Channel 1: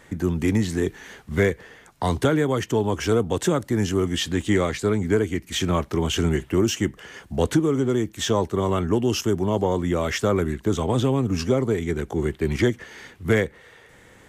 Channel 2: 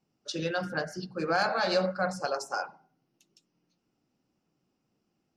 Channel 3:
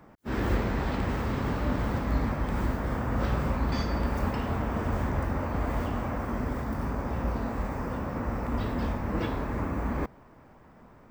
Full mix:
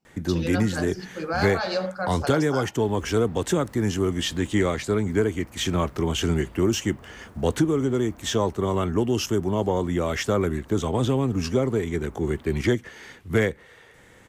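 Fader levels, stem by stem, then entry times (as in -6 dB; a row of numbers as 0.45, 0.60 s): -1.5, 0.0, -19.0 dB; 0.05, 0.00, 2.50 s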